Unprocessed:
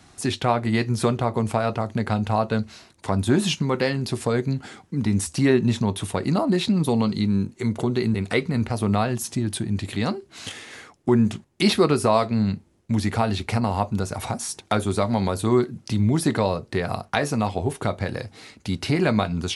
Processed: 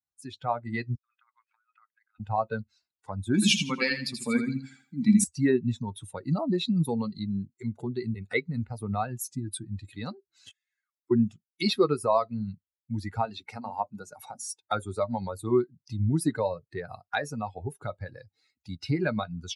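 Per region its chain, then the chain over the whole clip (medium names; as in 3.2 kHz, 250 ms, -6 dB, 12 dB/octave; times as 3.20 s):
0.95–2.20 s: high-pass 1.4 kHz 24 dB/octave + compressor with a negative ratio -40 dBFS, ratio -0.5 + tape spacing loss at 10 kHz 30 dB
3.34–5.24 s: tilt shelf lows -7 dB, about 920 Hz + small resonant body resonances 220/2300 Hz, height 14 dB, ringing for 40 ms + feedback delay 82 ms, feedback 46%, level -4 dB
10.51–11.11 s: steep high-pass 1.2 kHz + compression 20:1, threshold -48 dBFS
13.25–14.60 s: high-pass 150 Hz + hum notches 60/120/180/240/300 Hz
whole clip: expander on every frequency bin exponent 2; high-pass 110 Hz; level rider gain up to 9.5 dB; trim -8.5 dB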